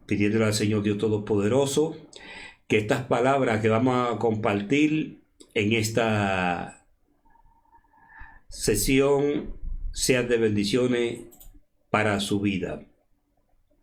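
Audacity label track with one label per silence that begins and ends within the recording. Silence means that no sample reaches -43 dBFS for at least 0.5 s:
6.760000	8.120000	silence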